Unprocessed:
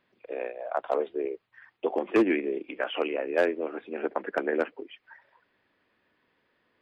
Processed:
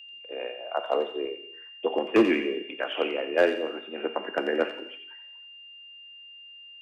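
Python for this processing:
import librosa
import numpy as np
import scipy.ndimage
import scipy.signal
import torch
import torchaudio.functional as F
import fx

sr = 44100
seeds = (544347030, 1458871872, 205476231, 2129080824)

p1 = x + 10.0 ** (-40.0 / 20.0) * np.sin(2.0 * np.pi * 2800.0 * np.arange(len(x)) / sr)
p2 = p1 + fx.echo_wet_highpass(p1, sr, ms=88, feedback_pct=35, hz=2100.0, wet_db=-6.0, dry=0)
p3 = fx.rev_gated(p2, sr, seeds[0], gate_ms=360, shape='falling', drr_db=9.0)
y = fx.band_widen(p3, sr, depth_pct=40)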